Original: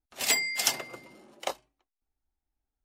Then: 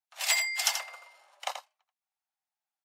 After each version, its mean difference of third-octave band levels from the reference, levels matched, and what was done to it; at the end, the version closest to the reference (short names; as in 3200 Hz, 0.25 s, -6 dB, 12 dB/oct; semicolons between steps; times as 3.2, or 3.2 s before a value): 9.0 dB: steep high-pass 680 Hz 36 dB/oct; high shelf 8700 Hz -5.5 dB; on a send: echo 83 ms -8 dB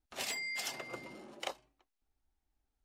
6.5 dB: soft clip -19 dBFS, distortion -13 dB; compressor 6:1, threshold -39 dBFS, peak gain reduction 14.5 dB; high shelf 9800 Hz -9 dB; gain +3 dB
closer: second